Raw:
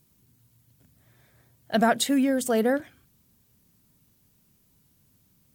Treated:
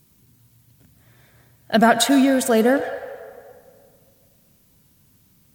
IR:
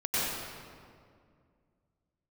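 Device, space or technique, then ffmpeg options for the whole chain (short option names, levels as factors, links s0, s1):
filtered reverb send: -filter_complex "[0:a]asplit=2[s0][s1];[s1]highpass=f=520:w=0.5412,highpass=f=520:w=1.3066,lowpass=6100[s2];[1:a]atrim=start_sample=2205[s3];[s2][s3]afir=irnorm=-1:irlink=0,volume=0.119[s4];[s0][s4]amix=inputs=2:normalize=0,volume=2.11"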